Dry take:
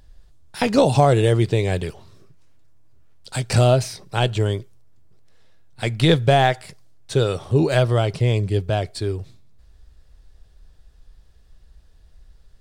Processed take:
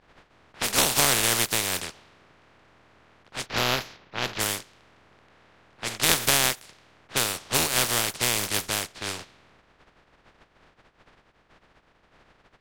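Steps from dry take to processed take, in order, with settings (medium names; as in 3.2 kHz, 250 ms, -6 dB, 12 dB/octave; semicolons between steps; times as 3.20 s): spectral contrast reduction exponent 0.17; 3.46–4.39 s: boxcar filter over 5 samples; level-controlled noise filter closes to 1.7 kHz, open at -16.5 dBFS; trim -6 dB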